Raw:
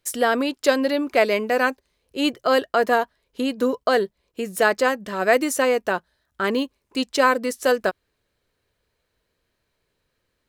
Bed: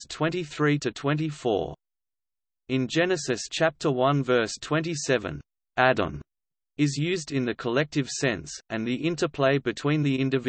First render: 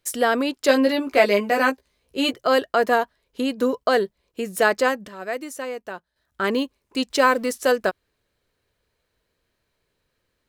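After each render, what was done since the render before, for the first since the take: 0.67–2.33 doubler 15 ms -3.5 dB; 4.78–6.46 dip -11 dB, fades 0.30 s logarithmic; 7.1–7.58 G.711 law mismatch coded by mu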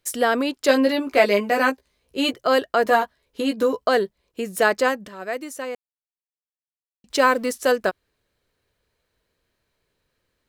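2.84–3.86 doubler 14 ms -4 dB; 5.75–7.04 mute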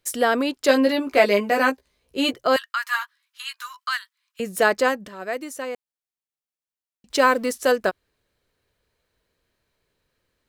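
2.56–4.4 steep high-pass 1100 Hz 48 dB/oct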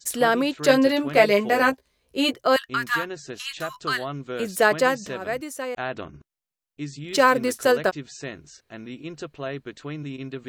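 add bed -9.5 dB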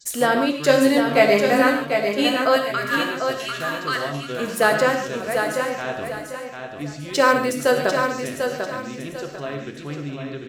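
feedback echo 0.745 s, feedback 32%, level -6 dB; non-linear reverb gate 0.17 s flat, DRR 4 dB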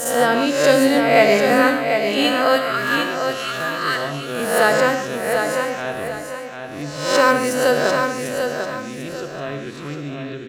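spectral swells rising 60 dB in 0.74 s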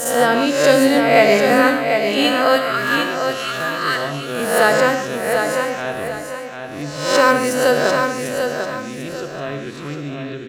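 gain +1.5 dB; limiter -1 dBFS, peak gain reduction 1 dB

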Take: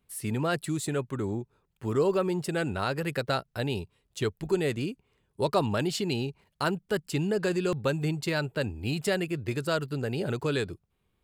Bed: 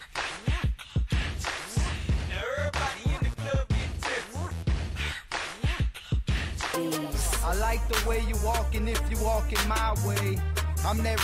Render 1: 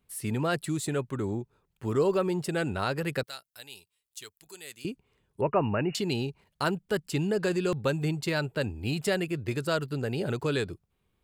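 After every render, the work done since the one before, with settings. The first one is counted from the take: 3.23–4.85 pre-emphasis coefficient 0.97; 5.41–5.95 brick-wall FIR low-pass 2900 Hz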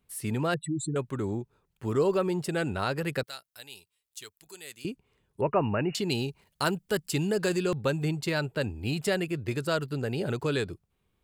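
0.54–0.96 spectral contrast raised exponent 3.1; 6.1–7.63 high shelf 4600 Hz +8 dB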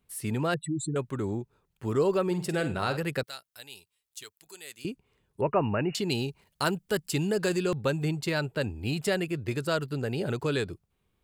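2.26–2.97 flutter echo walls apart 8.5 m, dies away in 0.31 s; 4.23–4.79 low shelf 230 Hz -6.5 dB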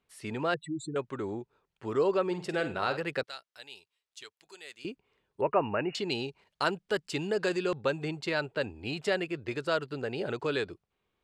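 LPF 5400 Hz 12 dB/oct; tone controls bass -11 dB, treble -2 dB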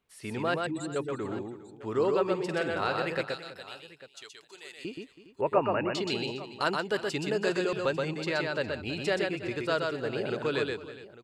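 tapped delay 0.125/0.325/0.409/0.847 s -3.5/-16.5/-17.5/-18 dB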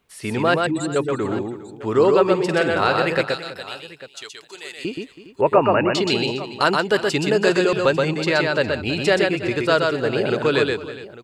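gain +11 dB; limiter -3 dBFS, peak gain reduction 2.5 dB

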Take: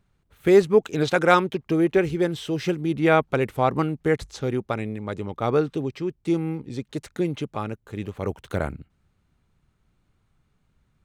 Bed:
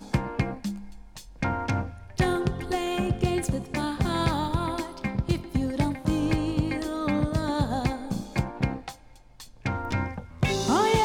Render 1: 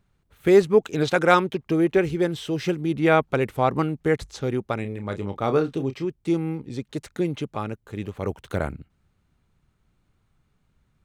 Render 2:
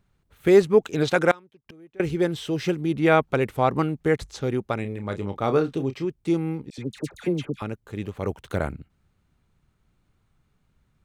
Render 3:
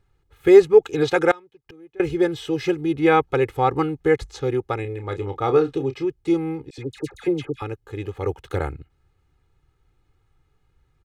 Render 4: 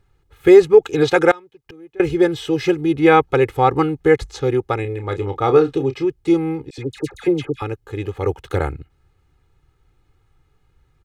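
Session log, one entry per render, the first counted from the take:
4.81–6.05 doubler 30 ms -9 dB
1.31–2 flipped gate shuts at -24 dBFS, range -28 dB; 6.7–7.62 dispersion lows, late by 81 ms, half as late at 1300 Hz
high shelf 5900 Hz -6 dB; comb 2.4 ms, depth 81%
gain +4.5 dB; limiter -1 dBFS, peak gain reduction 3 dB

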